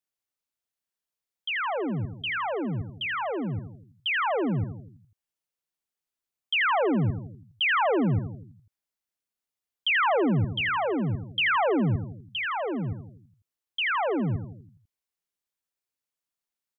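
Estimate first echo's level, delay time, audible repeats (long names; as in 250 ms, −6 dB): −9.5 dB, 82 ms, 5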